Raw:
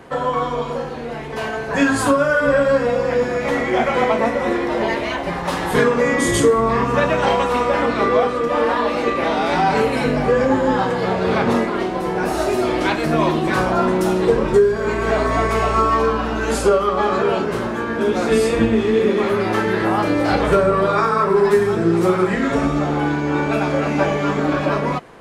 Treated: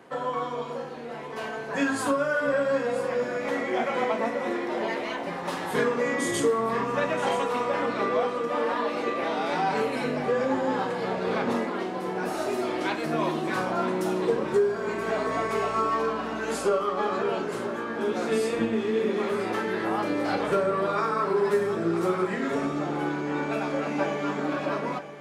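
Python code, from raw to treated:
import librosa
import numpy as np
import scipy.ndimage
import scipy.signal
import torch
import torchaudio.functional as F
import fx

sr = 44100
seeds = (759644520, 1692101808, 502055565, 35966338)

y = scipy.signal.sosfilt(scipy.signal.butter(2, 170.0, 'highpass', fs=sr, output='sos'), x)
y = y + 10.0 ** (-13.0 / 20.0) * np.pad(y, (int(976 * sr / 1000.0), 0))[:len(y)]
y = y * 10.0 ** (-9.0 / 20.0)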